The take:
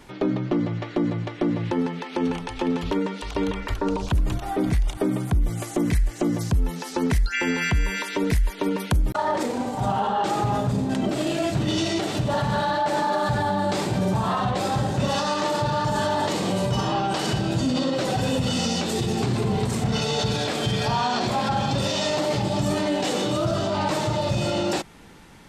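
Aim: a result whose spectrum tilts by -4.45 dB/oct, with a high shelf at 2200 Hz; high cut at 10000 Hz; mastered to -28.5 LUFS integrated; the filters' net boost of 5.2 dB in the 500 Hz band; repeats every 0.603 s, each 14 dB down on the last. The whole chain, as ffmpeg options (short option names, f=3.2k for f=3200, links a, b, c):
-af "lowpass=10k,equalizer=f=500:t=o:g=6,highshelf=f=2.2k:g=8,aecho=1:1:603|1206:0.2|0.0399,volume=-7.5dB"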